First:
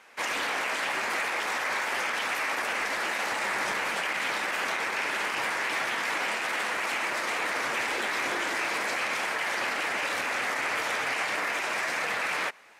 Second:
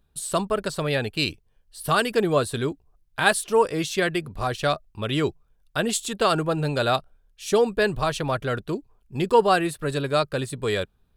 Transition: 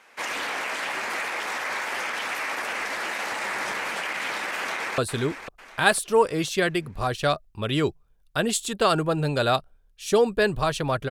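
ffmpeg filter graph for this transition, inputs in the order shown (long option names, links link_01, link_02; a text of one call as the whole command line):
ffmpeg -i cue0.wav -i cue1.wav -filter_complex "[0:a]apad=whole_dur=11.1,atrim=end=11.1,atrim=end=4.982[link_01];[1:a]atrim=start=2.378:end=8.5[link_02];[link_01][link_02]acrossfade=duration=0.004:curve1=hsin:curve2=hsin,asplit=2[link_03][link_04];[link_04]afade=type=in:start_time=4.58:duration=0.01,afade=type=out:start_time=4.98:duration=0.01,aecho=0:1:500|1000|1500|2000:0.334965|0.133986|0.0535945|0.0214378[link_05];[link_03][link_05]amix=inputs=2:normalize=0" out.wav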